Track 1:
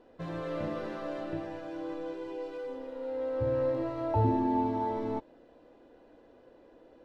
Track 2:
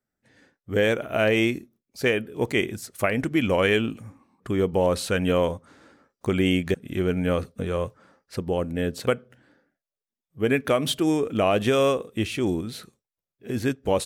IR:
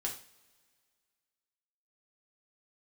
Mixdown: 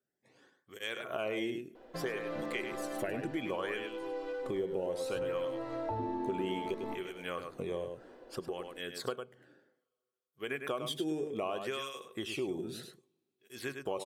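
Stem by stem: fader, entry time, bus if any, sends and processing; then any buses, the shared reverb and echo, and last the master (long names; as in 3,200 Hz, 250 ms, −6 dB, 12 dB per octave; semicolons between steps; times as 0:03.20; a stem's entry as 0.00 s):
−0.5 dB, 1.75 s, send −3 dB, no echo send, parametric band 100 Hz −11.5 dB 1.6 octaves
−4.0 dB, 0.00 s, send −19 dB, echo send −7.5 dB, parametric band 140 Hz +8 dB 0.43 octaves; hollow resonant body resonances 380/1,100/3,300 Hz, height 8 dB; through-zero flanger with one copy inverted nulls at 0.63 Hz, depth 1 ms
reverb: on, pre-delay 3 ms
echo: single-tap delay 102 ms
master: downward compressor 3 to 1, threshold −36 dBFS, peak gain reduction 14 dB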